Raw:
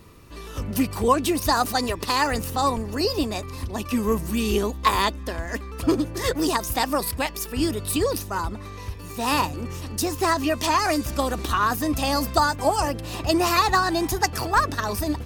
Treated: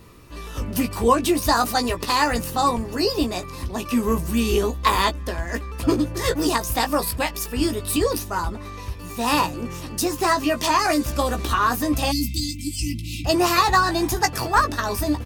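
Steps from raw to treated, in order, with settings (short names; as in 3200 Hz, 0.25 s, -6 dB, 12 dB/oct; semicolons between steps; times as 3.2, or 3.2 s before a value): doubler 17 ms -6.5 dB; spectral delete 12.12–13.25, 330–2000 Hz; gain +1 dB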